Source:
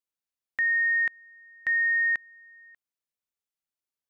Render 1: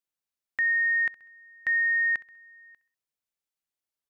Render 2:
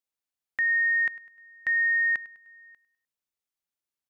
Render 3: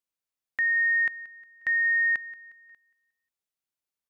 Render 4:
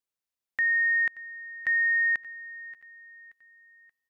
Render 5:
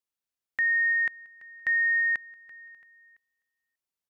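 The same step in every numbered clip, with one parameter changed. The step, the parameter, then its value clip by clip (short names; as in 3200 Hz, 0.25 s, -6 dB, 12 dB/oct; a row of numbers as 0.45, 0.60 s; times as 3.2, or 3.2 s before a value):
feedback echo, time: 65, 101, 179, 579, 336 ms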